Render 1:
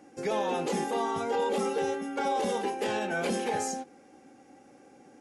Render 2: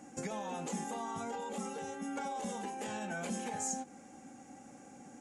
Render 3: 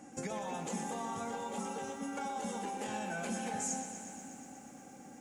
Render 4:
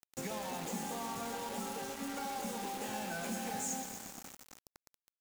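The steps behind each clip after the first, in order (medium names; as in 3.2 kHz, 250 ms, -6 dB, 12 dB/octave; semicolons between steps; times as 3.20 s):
compression 12:1, threshold -37 dBFS, peak gain reduction 12.5 dB; FFT filter 130 Hz 0 dB, 220 Hz +3 dB, 380 Hz -10 dB, 720 Hz -2 dB, 5 kHz -5 dB, 7.1 kHz +8 dB, 11 kHz -2 dB; trim +4 dB
bit-crushed delay 121 ms, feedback 80%, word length 11-bit, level -9.5 dB
bit crusher 7-bit; trim -1.5 dB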